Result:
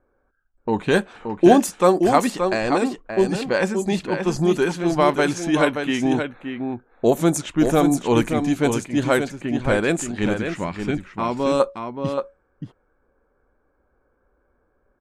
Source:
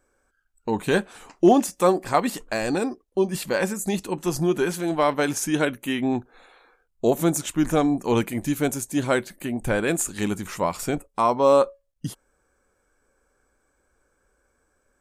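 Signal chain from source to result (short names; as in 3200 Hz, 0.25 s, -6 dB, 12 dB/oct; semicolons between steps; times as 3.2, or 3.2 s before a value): 10.39–11.6 band shelf 740 Hz -8.5 dB; echo 0.576 s -6.5 dB; low-pass opened by the level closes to 1200 Hz, open at -15.5 dBFS; gain +3 dB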